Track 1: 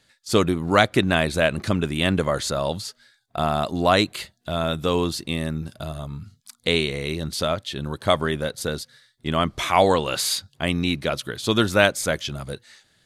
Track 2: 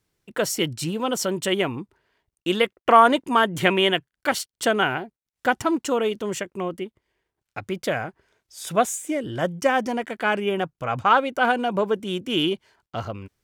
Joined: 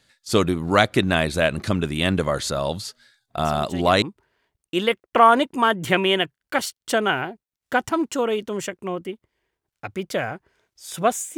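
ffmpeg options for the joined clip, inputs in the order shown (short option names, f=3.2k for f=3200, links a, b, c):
-filter_complex "[1:a]asplit=2[a][b];[0:a]apad=whole_dur=11.37,atrim=end=11.37,atrim=end=4.022[c];[b]atrim=start=1.748:end=9.1[d];[a]atrim=start=1.18:end=1.75,asetpts=PTS-STARTPTS,volume=-13dB,afade=t=in:d=0.004:c=hsin,afade=t=out:st=0.566:d=0.004:c=hsin,adelay=152145S[e];[c][d]acrossfade=d=0.004:c1=hsin:c2=hsin[f];[f][e]amix=inputs=2:normalize=0"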